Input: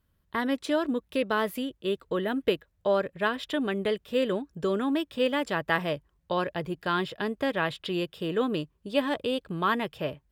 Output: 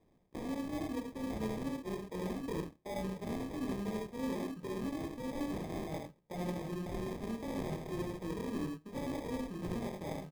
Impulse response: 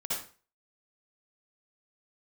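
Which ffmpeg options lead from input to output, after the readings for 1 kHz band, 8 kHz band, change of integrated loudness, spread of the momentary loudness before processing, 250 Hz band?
-13.5 dB, n/a, -10.5 dB, 5 LU, -7.5 dB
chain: -filter_complex "[0:a]aeval=exprs='if(lt(val(0),0),0.708*val(0),val(0))':c=same,acrossover=split=330|3000[a][b][c];[b]acompressor=threshold=-32dB:ratio=6[d];[a][d][c]amix=inputs=3:normalize=0,asplit=2[e][f];[f]adelay=27,volume=-4dB[g];[e][g]amix=inputs=2:normalize=0,areverse,acompressor=threshold=-46dB:ratio=4,areverse,acrusher=bits=4:mode=log:mix=0:aa=0.000001,highshelf=f=7.8k:g=11,asplit=2[h][i];[1:a]atrim=start_sample=2205,asetrate=74970,aresample=44100,adelay=17[j];[i][j]afir=irnorm=-1:irlink=0,volume=-22dB[k];[h][k]amix=inputs=2:normalize=0,flanger=delay=22.5:depth=3.7:speed=2.8,highpass=f=140:w=0.5412,highpass=f=140:w=1.3066,aecho=1:1:69|80:0.447|0.562,acrusher=samples=31:mix=1:aa=0.000001,tiltshelf=f=680:g=4.5,volume=6.5dB"

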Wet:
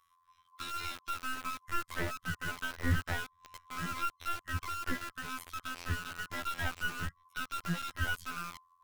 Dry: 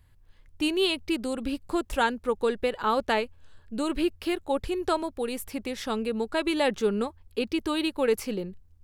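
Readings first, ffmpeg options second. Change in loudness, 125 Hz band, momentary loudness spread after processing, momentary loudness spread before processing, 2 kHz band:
-9.5 dB, +6.0 dB, 6 LU, 8 LU, -2.0 dB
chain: -filter_complex "[0:a]afftfilt=real='real(if(lt(b,960),b+48*(1-2*mod(floor(b/48),2)),b),0)':imag='imag(if(lt(b,960),b+48*(1-2*mod(floor(b/48),2)),b),0)':win_size=2048:overlap=0.75,asubboost=boost=3.5:cutoff=170,afftfilt=real='hypot(re,im)*cos(PI*b)':imag='0':win_size=2048:overlap=0.75,acrossover=split=170|1400[a][b][c];[b]acrusher=bits=4:dc=4:mix=0:aa=0.000001[d];[c]acompressor=threshold=-46dB:ratio=4[e];[a][d][e]amix=inputs=3:normalize=0"

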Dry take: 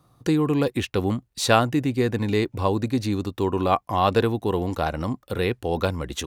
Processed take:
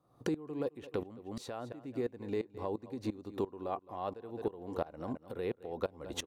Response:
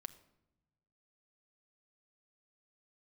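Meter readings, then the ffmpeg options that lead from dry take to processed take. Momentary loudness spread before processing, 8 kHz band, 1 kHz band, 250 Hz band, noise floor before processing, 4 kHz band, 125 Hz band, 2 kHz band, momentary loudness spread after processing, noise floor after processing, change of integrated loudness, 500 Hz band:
6 LU, under -15 dB, -18.0 dB, -15.5 dB, -65 dBFS, -18.0 dB, -21.0 dB, -20.5 dB, 5 LU, -65 dBFS, -16.0 dB, -13.0 dB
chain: -filter_complex "[0:a]equalizer=f=500:w=0.46:g=12.5,asplit=2[a][b];[b]aecho=0:1:214|428:0.188|0.0396[c];[a][c]amix=inputs=2:normalize=0,acompressor=threshold=-28dB:ratio=6,aeval=exprs='val(0)*pow(10,-20*if(lt(mod(-2.9*n/s,1),2*abs(-2.9)/1000),1-mod(-2.9*n/s,1)/(2*abs(-2.9)/1000),(mod(-2.9*n/s,1)-2*abs(-2.9)/1000)/(1-2*abs(-2.9)/1000))/20)':c=same,volume=-2.5dB"

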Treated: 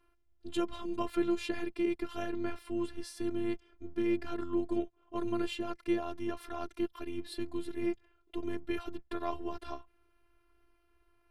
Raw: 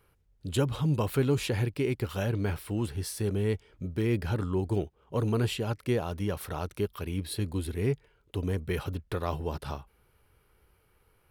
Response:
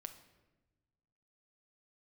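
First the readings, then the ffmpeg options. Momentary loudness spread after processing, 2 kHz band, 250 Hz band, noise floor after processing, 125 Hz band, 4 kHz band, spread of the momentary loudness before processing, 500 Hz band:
9 LU, -5.0 dB, -1.5 dB, -70 dBFS, -21.5 dB, -6.0 dB, 8 LU, -4.5 dB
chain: -af "afftfilt=real='hypot(re,im)*cos(PI*b)':imag='0':win_size=512:overlap=0.75,lowpass=11k,aemphasis=mode=reproduction:type=cd"

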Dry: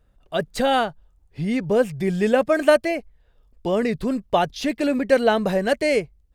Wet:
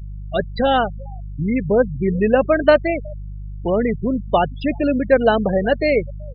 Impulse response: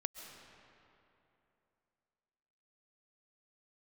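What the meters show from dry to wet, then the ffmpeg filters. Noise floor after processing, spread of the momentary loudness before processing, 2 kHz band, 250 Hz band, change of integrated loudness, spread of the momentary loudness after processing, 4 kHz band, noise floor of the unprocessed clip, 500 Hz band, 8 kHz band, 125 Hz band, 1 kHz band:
-32 dBFS, 10 LU, +2.0 dB, +3.0 dB, +3.0 dB, 11 LU, -0.5 dB, -60 dBFS, +3.0 dB, under -40 dB, +5.5 dB, +3.0 dB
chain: -filter_complex "[0:a]aeval=exprs='val(0)+0.0251*(sin(2*PI*50*n/s)+sin(2*PI*2*50*n/s)/2+sin(2*PI*3*50*n/s)/3+sin(2*PI*4*50*n/s)/4+sin(2*PI*5*50*n/s)/5)':c=same,asplit=2[a][b];[b]adelay=370,highpass=300,lowpass=3.4k,asoftclip=type=hard:threshold=-13dB,volume=-21dB[c];[a][c]amix=inputs=2:normalize=0,afftfilt=real='re*gte(hypot(re,im),0.0891)':imag='im*gte(hypot(re,im),0.0891)':win_size=1024:overlap=0.75,volume=3dB"

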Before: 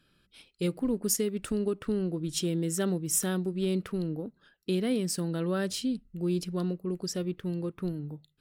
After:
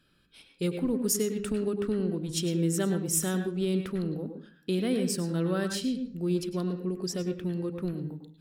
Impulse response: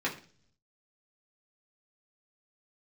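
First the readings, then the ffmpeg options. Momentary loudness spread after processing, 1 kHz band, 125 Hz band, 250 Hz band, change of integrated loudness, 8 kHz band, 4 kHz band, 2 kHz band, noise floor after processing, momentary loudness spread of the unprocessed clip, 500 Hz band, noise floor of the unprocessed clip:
7 LU, +1.0 dB, +1.5 dB, +1.0 dB, +1.0 dB, 0.0 dB, +0.5 dB, +1.5 dB, -64 dBFS, 7 LU, +1.0 dB, -70 dBFS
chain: -filter_complex "[0:a]asplit=2[a][b];[1:a]atrim=start_sample=2205,adelay=99[c];[b][c]afir=irnorm=-1:irlink=0,volume=-13.5dB[d];[a][d]amix=inputs=2:normalize=0"

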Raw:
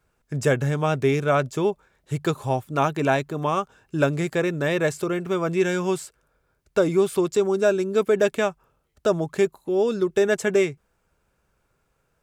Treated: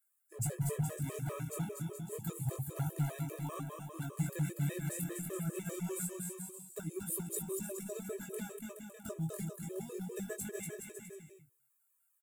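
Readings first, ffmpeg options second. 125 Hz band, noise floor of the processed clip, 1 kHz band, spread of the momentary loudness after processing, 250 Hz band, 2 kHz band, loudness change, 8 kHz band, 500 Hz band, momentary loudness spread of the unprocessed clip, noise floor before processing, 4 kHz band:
-9.0 dB, -76 dBFS, -22.5 dB, 9 LU, -15.0 dB, -22.0 dB, -16.5 dB, -3.0 dB, -22.5 dB, 7 LU, -71 dBFS, -19.5 dB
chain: -filter_complex "[0:a]acrossover=split=910[a][b];[a]aeval=exprs='sgn(val(0))*max(abs(val(0))-0.00316,0)':c=same[c];[c][b]amix=inputs=2:normalize=0,crystalizer=i=2:c=0,acompressor=threshold=-21dB:ratio=12,firequalizer=gain_entry='entry(120,0);entry(270,-13);entry(540,-16)':delay=0.05:min_phase=1,aecho=1:1:240|420|555|656.2|732.2:0.631|0.398|0.251|0.158|0.1,aeval=exprs='0.0501*(abs(mod(val(0)/0.0501+3,4)-2)-1)':c=same,highshelf=f=7.6k:g=-8,bandreject=f=67.9:t=h:w=4,bandreject=f=135.8:t=h:w=4,bandreject=f=203.7:t=h:w=4,bandreject=f=271.6:t=h:w=4,bandreject=f=339.5:t=h:w=4,bandreject=f=407.4:t=h:w=4,bandreject=f=475.3:t=h:w=4,bandreject=f=543.2:t=h:w=4,aexciter=amount=9.3:drive=6.2:freq=7.8k,flanger=delay=18:depth=6.4:speed=0.27,afftfilt=real='re*gt(sin(2*PI*5*pts/sr)*(1-2*mod(floor(b*sr/1024/330),2)),0)':imag='im*gt(sin(2*PI*5*pts/sr)*(1-2*mod(floor(b*sr/1024/330),2)),0)':win_size=1024:overlap=0.75,volume=2dB"

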